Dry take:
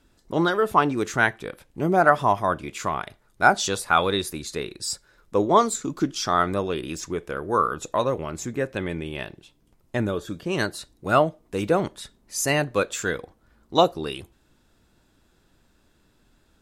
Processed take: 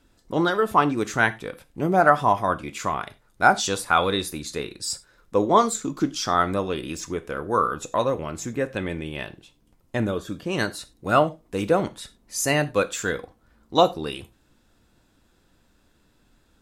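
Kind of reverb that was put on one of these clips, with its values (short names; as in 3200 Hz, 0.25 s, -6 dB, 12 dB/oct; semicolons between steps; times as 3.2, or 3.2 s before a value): non-linear reverb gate 0.12 s falling, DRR 10.5 dB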